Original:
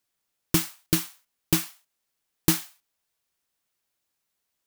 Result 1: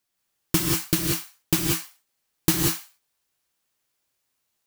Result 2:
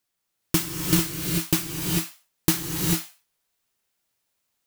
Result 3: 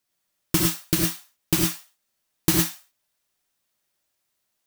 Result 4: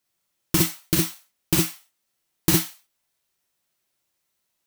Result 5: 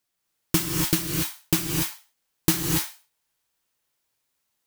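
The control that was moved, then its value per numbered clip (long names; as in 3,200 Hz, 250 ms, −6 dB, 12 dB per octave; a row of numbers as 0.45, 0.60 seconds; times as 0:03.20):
reverb whose tail is shaped and stops, gate: 210, 470, 130, 80, 310 milliseconds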